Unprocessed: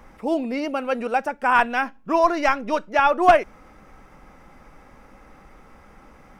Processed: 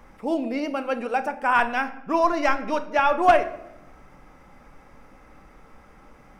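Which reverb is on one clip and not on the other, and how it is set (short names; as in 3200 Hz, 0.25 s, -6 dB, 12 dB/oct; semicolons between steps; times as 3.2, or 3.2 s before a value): shoebox room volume 280 m³, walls mixed, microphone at 0.35 m; gain -2.5 dB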